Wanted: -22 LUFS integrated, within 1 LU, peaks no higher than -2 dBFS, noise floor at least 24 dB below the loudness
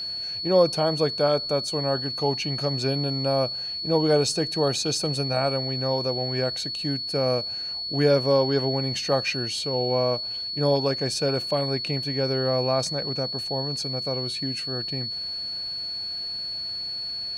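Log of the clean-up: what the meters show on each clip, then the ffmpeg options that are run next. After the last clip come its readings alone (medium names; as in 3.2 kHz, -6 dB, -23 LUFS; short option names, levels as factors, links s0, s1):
steady tone 4.4 kHz; tone level -29 dBFS; loudness -24.5 LUFS; peak level -7.0 dBFS; loudness target -22.0 LUFS
-> -af "bandreject=f=4400:w=30"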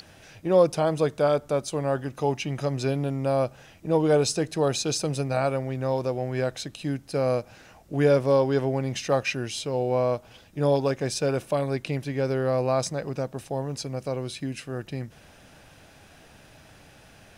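steady tone not found; loudness -26.0 LUFS; peak level -7.5 dBFS; loudness target -22.0 LUFS
-> -af "volume=1.58"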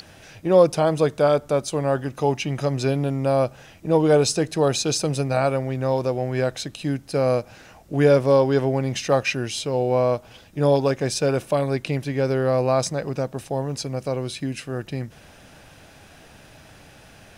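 loudness -22.5 LUFS; peak level -3.5 dBFS; noise floor -49 dBFS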